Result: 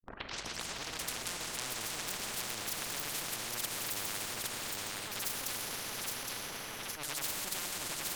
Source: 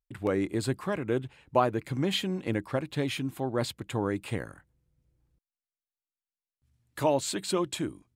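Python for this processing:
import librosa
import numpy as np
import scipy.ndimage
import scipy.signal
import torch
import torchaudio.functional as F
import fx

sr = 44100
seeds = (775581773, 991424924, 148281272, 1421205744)

p1 = fx.tape_start_head(x, sr, length_s=1.16)
p2 = fx.cheby_harmonics(p1, sr, harmonics=(8,), levels_db=(-15,), full_scale_db=-10.0)
p3 = fx.granulator(p2, sr, seeds[0], grain_ms=100.0, per_s=20.0, spray_ms=100.0, spread_st=0)
p4 = fx.harmonic_tremolo(p3, sr, hz=2.3, depth_pct=100, crossover_hz=800.0)
p5 = fx.echo_pitch(p4, sr, ms=145, semitones=6, count=3, db_per_echo=-6.0)
p6 = p5 + fx.echo_feedback(p5, sr, ms=816, feedback_pct=37, wet_db=-8, dry=0)
p7 = fx.rev_plate(p6, sr, seeds[1], rt60_s=4.9, hf_ratio=0.95, predelay_ms=0, drr_db=4.5)
p8 = fx.transient(p7, sr, attack_db=-8, sustain_db=-4)
y = fx.spectral_comp(p8, sr, ratio=10.0)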